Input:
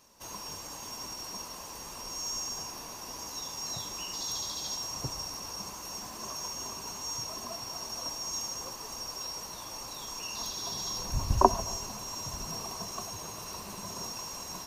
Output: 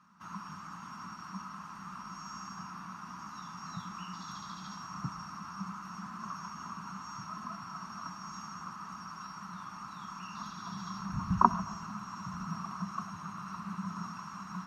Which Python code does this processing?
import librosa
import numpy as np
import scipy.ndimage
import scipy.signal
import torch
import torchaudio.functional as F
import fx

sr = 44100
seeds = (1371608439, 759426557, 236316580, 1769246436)

y = fx.double_bandpass(x, sr, hz=490.0, octaves=2.8)
y = y * 10.0 ** (13.0 / 20.0)